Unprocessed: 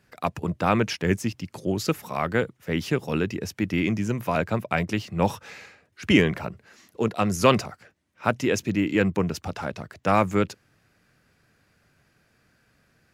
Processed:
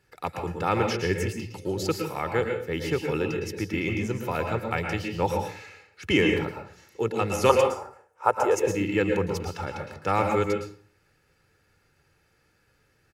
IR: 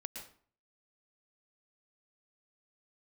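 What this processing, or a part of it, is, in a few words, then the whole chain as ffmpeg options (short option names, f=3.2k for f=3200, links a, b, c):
microphone above a desk: -filter_complex "[0:a]asettb=1/sr,asplit=3[a][b][c];[a]atrim=end=7.494[d];[b]atrim=start=7.49:end=8.63,asetpts=PTS-STARTPTS,afade=t=in:d=0.004:c=qsin,afade=t=out:st=1.136:d=0.004:c=qsin,equalizer=f=125:t=o:w=1:g=-10,equalizer=f=250:t=o:w=1:g=-10,equalizer=f=500:t=o:w=1:g=6,equalizer=f=1k:t=o:w=1:g=11,equalizer=f=2k:t=o:w=1:g=-7,equalizer=f=4k:t=o:w=1:g=-10,equalizer=f=8k:t=o:w=1:g=6[e];[c]atrim=start=8.626[f];[d][e]acrossfade=d=0.004:c1=hsin:c2=qsin[g];[g][f]acrossfade=d=0.004:c1=qsin:c2=hsin,aecho=1:1:2.3:0.58[h];[1:a]atrim=start_sample=2205[i];[h][i]afir=irnorm=-1:irlink=0"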